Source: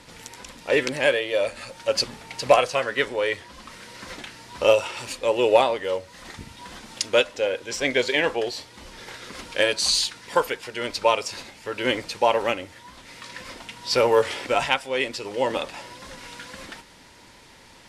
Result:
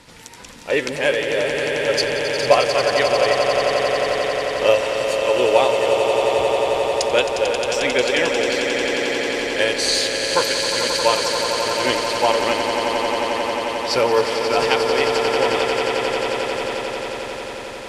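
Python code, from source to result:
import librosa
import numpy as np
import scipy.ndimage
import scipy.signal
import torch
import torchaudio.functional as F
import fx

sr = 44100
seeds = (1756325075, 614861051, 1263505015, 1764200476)

y = fx.echo_swell(x, sr, ms=89, loudest=8, wet_db=-8.5)
y = y * 10.0 ** (1.0 / 20.0)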